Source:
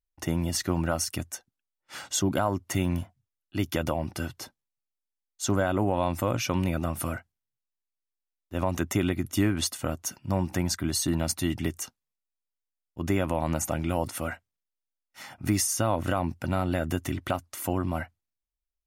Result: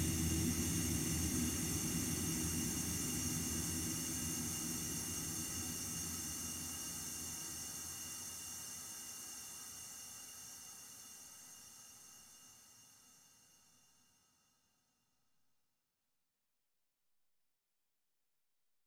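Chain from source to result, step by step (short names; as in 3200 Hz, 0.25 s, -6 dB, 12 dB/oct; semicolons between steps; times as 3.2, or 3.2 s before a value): auto swell 0.392 s; Paulstretch 27×, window 1.00 s, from 11.76; echo with dull and thin repeats by turns 0.312 s, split 980 Hz, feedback 55%, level -5 dB; gain +6 dB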